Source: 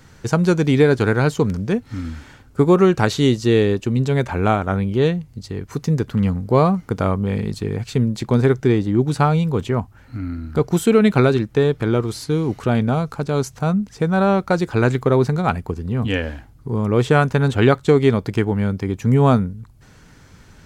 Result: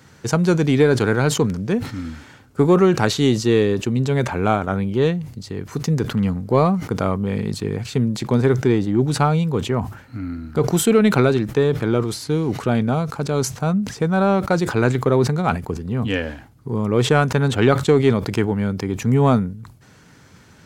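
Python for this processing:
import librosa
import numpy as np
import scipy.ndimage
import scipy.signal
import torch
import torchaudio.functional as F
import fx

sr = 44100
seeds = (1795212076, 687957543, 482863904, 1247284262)

p1 = scipy.signal.sosfilt(scipy.signal.butter(2, 100.0, 'highpass', fs=sr, output='sos'), x)
p2 = 10.0 ** (-13.5 / 20.0) * np.tanh(p1 / 10.0 ** (-13.5 / 20.0))
p3 = p1 + (p2 * librosa.db_to_amplitude(-9.5))
p4 = fx.sustainer(p3, sr, db_per_s=110.0)
y = p4 * librosa.db_to_amplitude(-2.5)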